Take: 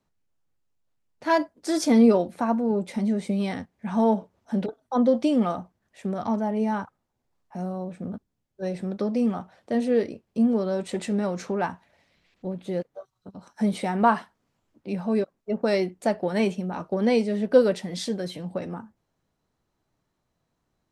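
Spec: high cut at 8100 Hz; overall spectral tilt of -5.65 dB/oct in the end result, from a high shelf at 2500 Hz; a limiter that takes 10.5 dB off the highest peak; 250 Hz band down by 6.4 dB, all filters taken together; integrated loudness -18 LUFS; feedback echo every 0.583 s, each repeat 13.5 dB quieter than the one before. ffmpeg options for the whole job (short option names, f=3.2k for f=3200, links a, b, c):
-af "lowpass=8.1k,equalizer=f=250:t=o:g=-7.5,highshelf=f=2.5k:g=-6,alimiter=limit=-19dB:level=0:latency=1,aecho=1:1:583|1166:0.211|0.0444,volume=13dB"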